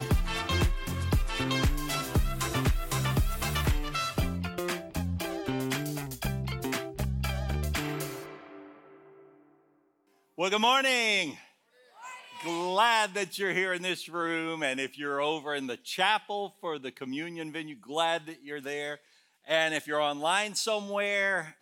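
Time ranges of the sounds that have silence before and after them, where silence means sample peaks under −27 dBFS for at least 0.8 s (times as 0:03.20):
0:10.40–0:11.27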